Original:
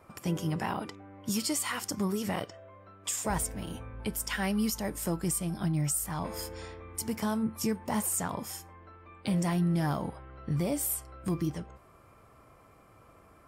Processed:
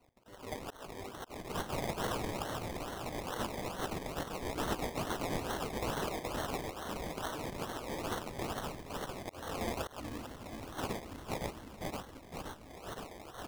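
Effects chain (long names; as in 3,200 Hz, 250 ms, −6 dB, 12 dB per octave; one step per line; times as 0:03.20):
feedback delay that plays each chunk backwards 259 ms, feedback 80%, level −1.5 dB
low-shelf EQ 340 Hz +8 dB
reversed playback
upward compression, threshold −24 dBFS
reversed playback
gate on every frequency bin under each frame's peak −20 dB weak
volume swells 273 ms
gain on a spectral selection 0:10.00–0:12.70, 340–1,900 Hz −29 dB
sample-and-hold swept by an LFO 25×, swing 60% 2.3 Hz
level −2.5 dB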